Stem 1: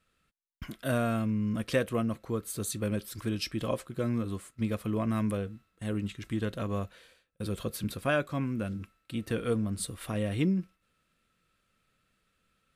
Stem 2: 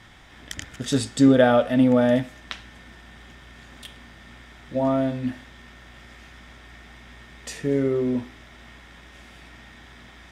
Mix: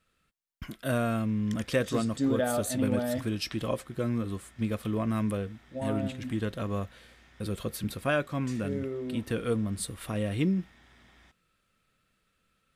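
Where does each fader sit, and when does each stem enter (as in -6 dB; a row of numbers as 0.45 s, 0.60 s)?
+0.5 dB, -12.0 dB; 0.00 s, 1.00 s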